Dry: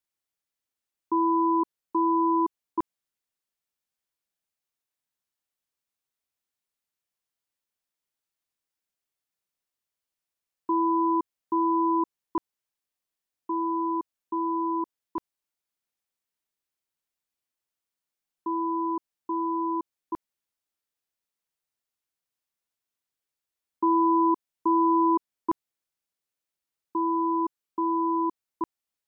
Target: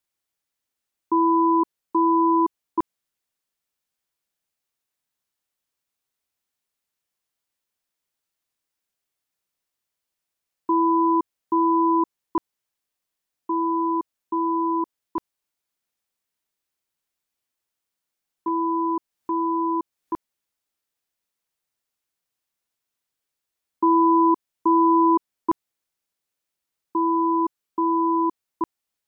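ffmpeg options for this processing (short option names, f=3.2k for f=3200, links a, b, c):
-filter_complex "[0:a]asettb=1/sr,asplit=3[a][b][c];[a]atrim=end=18.484[d];[b]atrim=start=18.48:end=20.13,asetpts=PTS-STARTPTS,afade=t=in:d=0.004:c=qsin,afade=t=out:st=1.646:d=0.004:c=qsin,acompressor=mode=upward:threshold=-33dB:ratio=2.5[e];[c]atrim=start=20.126[f];[d][e]acrossfade=d=0.004:c1=hsin:c2=qsin[g];[g][f]acrossfade=d=0.004:c1=qsin:c2=hsin,volume=4.5dB"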